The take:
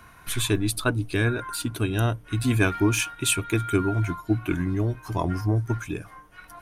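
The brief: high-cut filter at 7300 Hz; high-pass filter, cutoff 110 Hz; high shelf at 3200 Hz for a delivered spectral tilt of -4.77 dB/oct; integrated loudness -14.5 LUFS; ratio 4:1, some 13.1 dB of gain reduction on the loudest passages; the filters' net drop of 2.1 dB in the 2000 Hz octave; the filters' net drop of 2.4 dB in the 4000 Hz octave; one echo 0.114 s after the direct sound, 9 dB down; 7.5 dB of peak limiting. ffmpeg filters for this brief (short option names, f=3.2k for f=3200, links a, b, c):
-af "highpass=110,lowpass=7.3k,equalizer=f=2k:t=o:g=-4,highshelf=f=3.2k:g=7.5,equalizer=f=4k:t=o:g=-6.5,acompressor=threshold=-34dB:ratio=4,alimiter=level_in=4dB:limit=-24dB:level=0:latency=1,volume=-4dB,aecho=1:1:114:0.355,volume=23.5dB"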